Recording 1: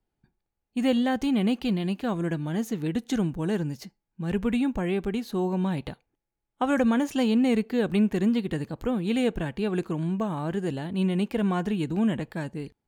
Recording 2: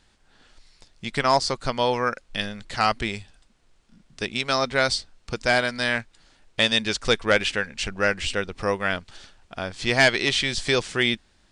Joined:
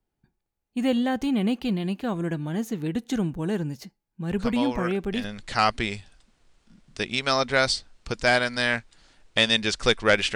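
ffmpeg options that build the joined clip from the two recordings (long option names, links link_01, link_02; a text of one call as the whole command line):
ffmpeg -i cue0.wav -i cue1.wav -filter_complex "[1:a]asplit=2[link_01][link_02];[0:a]apad=whole_dur=10.35,atrim=end=10.35,atrim=end=5.242[link_03];[link_02]atrim=start=2.458:end=7.57[link_04];[link_01]atrim=start=1.6:end=2.46,asetpts=PTS-STARTPTS,volume=-7.5dB,afade=type=in:duration=0.004:curve=hsin,afade=type=out:start_time=0.856:duration=0.004:curve=hsin,adelay=4380[link_05];[link_03][link_04]acrossfade=duration=0.004:curve1=hsin:curve2=hsin[link_06];[link_06][link_05]amix=inputs=2:normalize=0" out.wav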